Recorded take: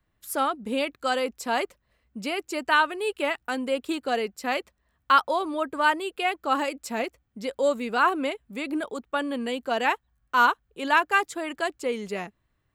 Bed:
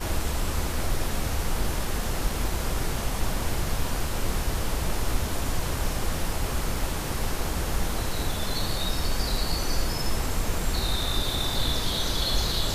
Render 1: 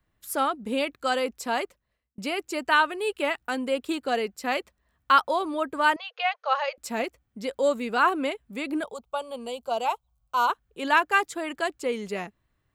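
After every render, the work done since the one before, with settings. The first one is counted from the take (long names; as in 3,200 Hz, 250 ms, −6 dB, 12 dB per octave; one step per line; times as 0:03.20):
0:01.44–0:02.18: fade out
0:05.96–0:06.78: linear-phase brick-wall band-pass 460–6,700 Hz
0:08.84–0:10.50: phaser with its sweep stopped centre 740 Hz, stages 4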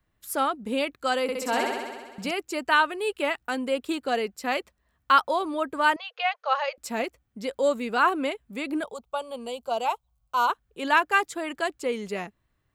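0:01.22–0:02.31: flutter between parallel walls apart 11.2 metres, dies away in 1.4 s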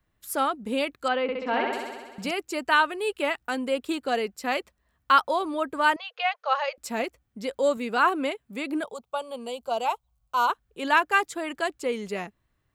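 0:01.08–0:01.73: low-pass filter 3,200 Hz 24 dB per octave
0:07.77–0:09.61: high-pass filter 100 Hz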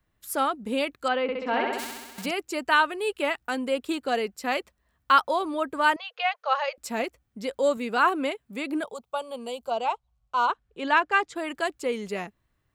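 0:01.78–0:02.24: spectral envelope flattened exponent 0.3
0:09.70–0:11.36: high-frequency loss of the air 86 metres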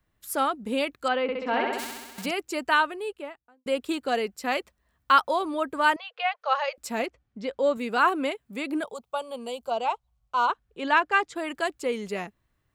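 0:02.61–0:03.66: fade out and dull
0:06.00–0:06.42: high-frequency loss of the air 120 metres
0:07.06–0:07.76: high-frequency loss of the air 120 metres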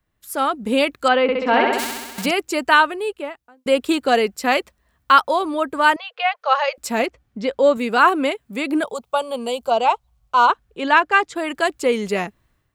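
automatic gain control gain up to 10 dB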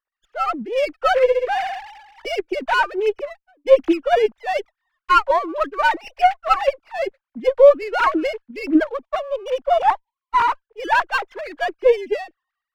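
three sine waves on the formant tracks
windowed peak hold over 5 samples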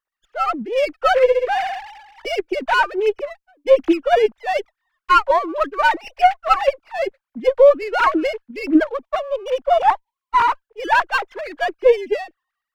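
level +1.5 dB
brickwall limiter −3 dBFS, peak gain reduction 3 dB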